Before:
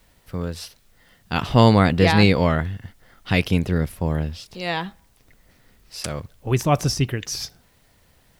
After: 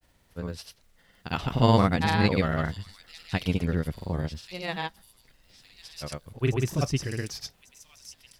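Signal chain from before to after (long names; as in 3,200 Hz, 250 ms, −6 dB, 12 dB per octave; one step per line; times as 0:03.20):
delay with a high-pass on its return 1,151 ms, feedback 40%, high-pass 4,700 Hz, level −7 dB
granular cloud, pitch spread up and down by 0 semitones
level −5 dB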